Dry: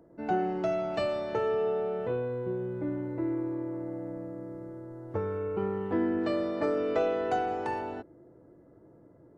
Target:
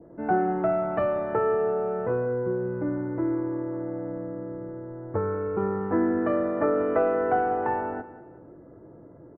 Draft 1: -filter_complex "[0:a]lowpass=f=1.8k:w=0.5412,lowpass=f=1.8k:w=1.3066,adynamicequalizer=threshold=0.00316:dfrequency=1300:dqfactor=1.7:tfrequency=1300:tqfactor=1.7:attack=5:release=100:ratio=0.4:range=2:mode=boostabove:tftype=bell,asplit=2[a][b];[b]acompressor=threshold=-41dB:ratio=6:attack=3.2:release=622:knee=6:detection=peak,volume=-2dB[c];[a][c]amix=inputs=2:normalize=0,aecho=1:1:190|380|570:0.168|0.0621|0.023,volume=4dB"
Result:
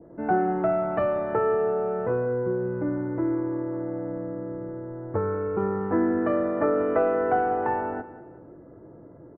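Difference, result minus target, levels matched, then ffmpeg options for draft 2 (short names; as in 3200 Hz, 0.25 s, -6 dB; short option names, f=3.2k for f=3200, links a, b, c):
compressor: peak gain reduction -9 dB
-filter_complex "[0:a]lowpass=f=1.8k:w=0.5412,lowpass=f=1.8k:w=1.3066,adynamicequalizer=threshold=0.00316:dfrequency=1300:dqfactor=1.7:tfrequency=1300:tqfactor=1.7:attack=5:release=100:ratio=0.4:range=2:mode=boostabove:tftype=bell,asplit=2[a][b];[b]acompressor=threshold=-51.5dB:ratio=6:attack=3.2:release=622:knee=6:detection=peak,volume=-2dB[c];[a][c]amix=inputs=2:normalize=0,aecho=1:1:190|380|570:0.168|0.0621|0.023,volume=4dB"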